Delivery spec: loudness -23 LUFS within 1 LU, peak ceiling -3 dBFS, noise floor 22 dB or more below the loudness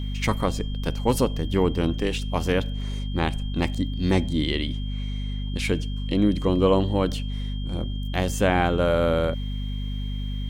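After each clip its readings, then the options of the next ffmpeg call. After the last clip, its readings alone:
hum 50 Hz; highest harmonic 250 Hz; hum level -26 dBFS; steady tone 3.2 kHz; tone level -42 dBFS; loudness -25.5 LUFS; peak level -6.0 dBFS; loudness target -23.0 LUFS
-> -af "bandreject=f=50:t=h:w=6,bandreject=f=100:t=h:w=6,bandreject=f=150:t=h:w=6,bandreject=f=200:t=h:w=6,bandreject=f=250:t=h:w=6"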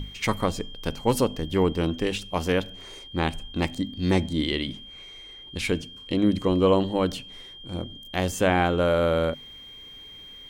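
hum not found; steady tone 3.2 kHz; tone level -42 dBFS
-> -af "bandreject=f=3200:w=30"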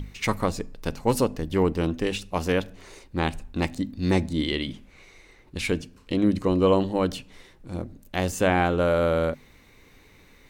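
steady tone not found; loudness -25.5 LUFS; peak level -7.5 dBFS; loudness target -23.0 LUFS
-> -af "volume=1.33"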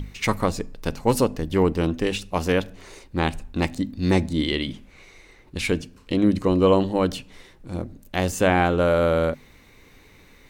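loudness -23.0 LUFS; peak level -5.0 dBFS; noise floor -52 dBFS

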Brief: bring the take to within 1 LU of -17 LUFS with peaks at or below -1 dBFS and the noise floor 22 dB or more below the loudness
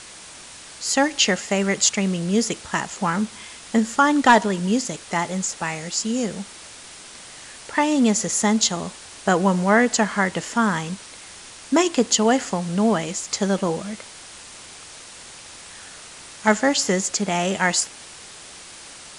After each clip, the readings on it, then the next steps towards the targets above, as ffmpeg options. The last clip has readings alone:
noise floor -42 dBFS; noise floor target -43 dBFS; loudness -21.0 LUFS; peak level -4.0 dBFS; loudness target -17.0 LUFS
-> -af "afftdn=nr=6:nf=-42"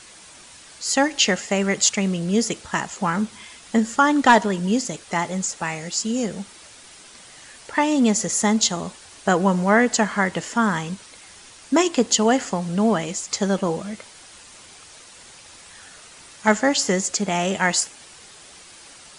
noise floor -46 dBFS; loudness -21.0 LUFS; peak level -4.0 dBFS; loudness target -17.0 LUFS
-> -af "volume=1.58,alimiter=limit=0.891:level=0:latency=1"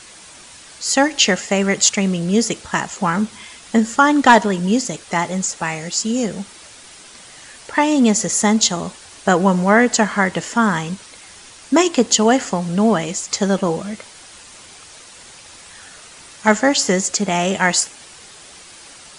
loudness -17.0 LUFS; peak level -1.0 dBFS; noise floor -42 dBFS

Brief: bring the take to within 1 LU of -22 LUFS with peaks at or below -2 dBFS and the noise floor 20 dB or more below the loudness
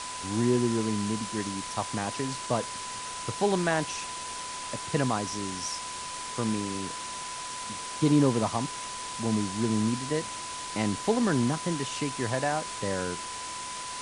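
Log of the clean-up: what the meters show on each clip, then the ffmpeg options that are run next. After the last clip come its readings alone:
steady tone 1 kHz; tone level -38 dBFS; noise floor -38 dBFS; noise floor target -50 dBFS; loudness -30.0 LUFS; peak level -11.5 dBFS; loudness target -22.0 LUFS
-> -af "bandreject=f=1000:w=30"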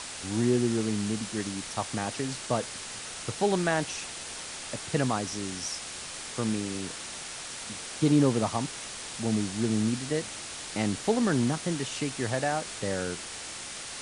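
steady tone not found; noise floor -40 dBFS; noise floor target -50 dBFS
-> -af "afftdn=nr=10:nf=-40"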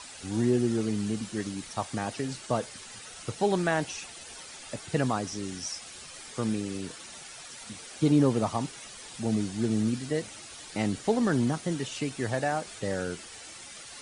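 noise floor -46 dBFS; noise floor target -50 dBFS
-> -af "afftdn=nr=6:nf=-46"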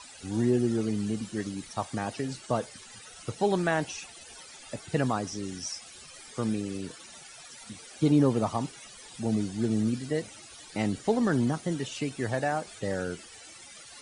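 noise floor -49 dBFS; noise floor target -50 dBFS
-> -af "afftdn=nr=6:nf=-49"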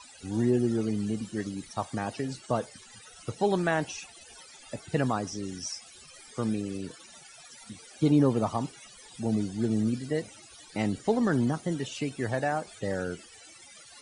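noise floor -52 dBFS; loudness -30.0 LUFS; peak level -12.0 dBFS; loudness target -22.0 LUFS
-> -af "volume=2.51"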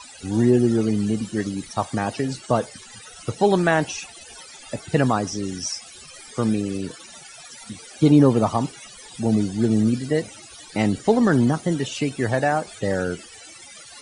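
loudness -22.0 LUFS; peak level -4.0 dBFS; noise floor -44 dBFS

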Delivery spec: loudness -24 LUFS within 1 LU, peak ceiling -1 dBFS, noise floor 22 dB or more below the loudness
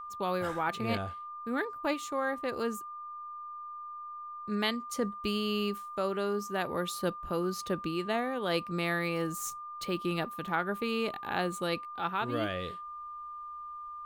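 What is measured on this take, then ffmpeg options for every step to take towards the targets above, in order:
steady tone 1.2 kHz; tone level -40 dBFS; loudness -34.0 LUFS; peak level -16.5 dBFS; loudness target -24.0 LUFS
-> -af "bandreject=f=1200:w=30"
-af "volume=3.16"

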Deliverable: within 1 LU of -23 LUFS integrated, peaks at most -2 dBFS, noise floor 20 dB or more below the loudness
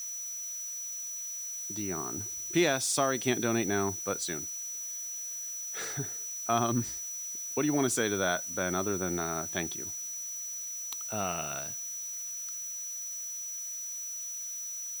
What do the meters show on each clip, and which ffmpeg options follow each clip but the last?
steady tone 5.9 kHz; tone level -36 dBFS; noise floor -39 dBFS; noise floor target -52 dBFS; loudness -32.0 LUFS; peak level -13.5 dBFS; loudness target -23.0 LUFS
-> -af "bandreject=f=5900:w=30"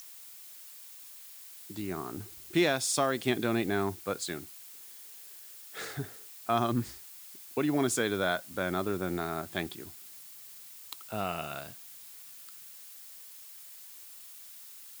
steady tone not found; noise floor -49 dBFS; noise floor target -53 dBFS
-> -af "afftdn=nr=6:nf=-49"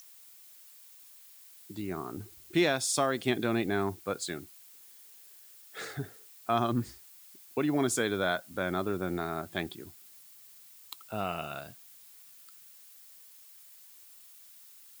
noise floor -55 dBFS; loudness -32.0 LUFS; peak level -13.5 dBFS; loudness target -23.0 LUFS
-> -af "volume=2.82"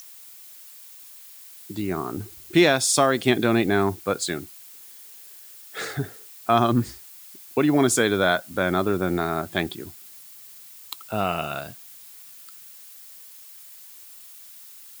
loudness -23.0 LUFS; peak level -4.5 dBFS; noise floor -46 dBFS

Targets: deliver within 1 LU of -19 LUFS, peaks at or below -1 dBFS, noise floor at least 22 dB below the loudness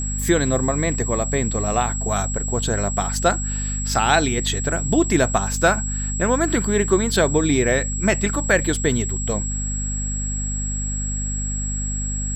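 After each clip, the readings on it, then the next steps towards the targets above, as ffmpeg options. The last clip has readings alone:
hum 50 Hz; highest harmonic 250 Hz; hum level -24 dBFS; steady tone 7.7 kHz; tone level -27 dBFS; loudness -21.0 LUFS; peak level -3.5 dBFS; loudness target -19.0 LUFS
-> -af "bandreject=f=50:t=h:w=4,bandreject=f=100:t=h:w=4,bandreject=f=150:t=h:w=4,bandreject=f=200:t=h:w=4,bandreject=f=250:t=h:w=4"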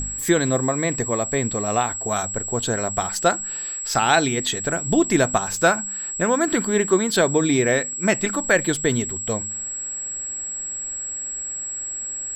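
hum not found; steady tone 7.7 kHz; tone level -27 dBFS
-> -af "bandreject=f=7700:w=30"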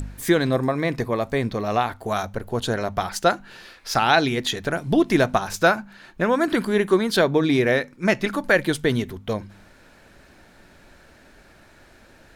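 steady tone not found; loudness -22.0 LUFS; peak level -4.5 dBFS; loudness target -19.0 LUFS
-> -af "volume=1.41"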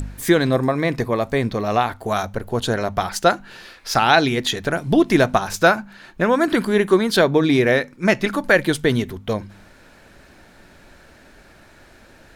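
loudness -19.0 LUFS; peak level -1.5 dBFS; noise floor -49 dBFS

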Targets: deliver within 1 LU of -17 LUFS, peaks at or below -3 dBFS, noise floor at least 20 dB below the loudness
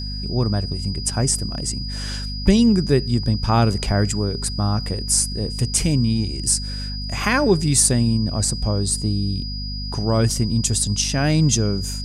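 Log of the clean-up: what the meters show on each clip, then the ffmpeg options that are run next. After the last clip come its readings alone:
hum 50 Hz; highest harmonic 250 Hz; hum level -26 dBFS; steady tone 4.9 kHz; tone level -31 dBFS; loudness -20.0 LUFS; peak level -2.5 dBFS; loudness target -17.0 LUFS
-> -af "bandreject=f=50:t=h:w=6,bandreject=f=100:t=h:w=6,bandreject=f=150:t=h:w=6,bandreject=f=200:t=h:w=6,bandreject=f=250:t=h:w=6"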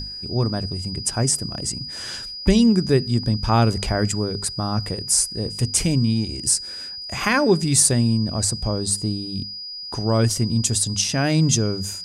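hum not found; steady tone 4.9 kHz; tone level -31 dBFS
-> -af "bandreject=f=4900:w=30"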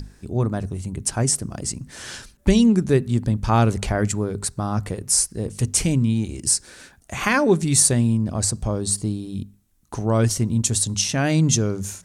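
steady tone not found; loudness -21.0 LUFS; peak level -4.0 dBFS; loudness target -17.0 LUFS
-> -af "volume=1.58,alimiter=limit=0.708:level=0:latency=1"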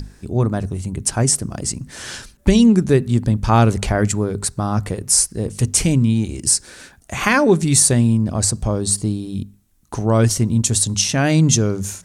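loudness -17.5 LUFS; peak level -3.0 dBFS; noise floor -51 dBFS

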